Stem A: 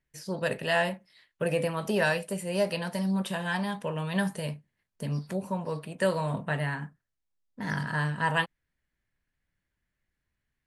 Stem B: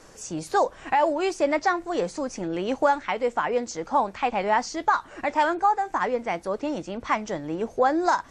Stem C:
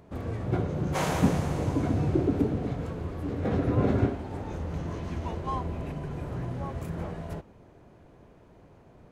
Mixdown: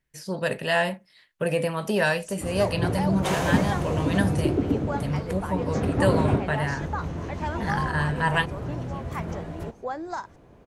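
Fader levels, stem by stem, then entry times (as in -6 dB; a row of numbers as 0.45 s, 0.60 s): +3.0 dB, -11.0 dB, +1.5 dB; 0.00 s, 2.05 s, 2.30 s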